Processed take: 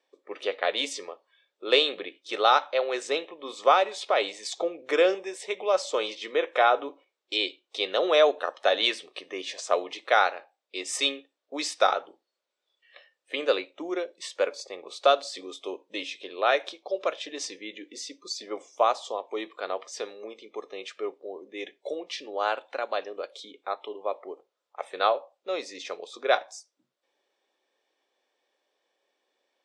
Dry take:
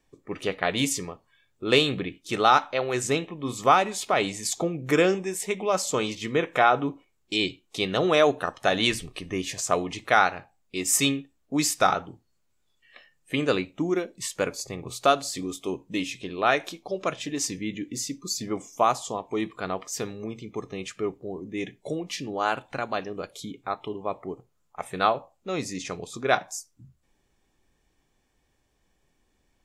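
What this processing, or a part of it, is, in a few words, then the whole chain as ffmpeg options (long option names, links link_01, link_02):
phone speaker on a table: -af "highpass=frequency=380:width=0.5412,highpass=frequency=380:width=1.3066,equalizer=frequency=550:width_type=q:width=4:gain=7,equalizer=frequency=3600:width_type=q:width=4:gain=5,equalizer=frequency=6900:width_type=q:width=4:gain=-8,lowpass=frequency=7400:width=0.5412,lowpass=frequency=7400:width=1.3066,volume=-2.5dB"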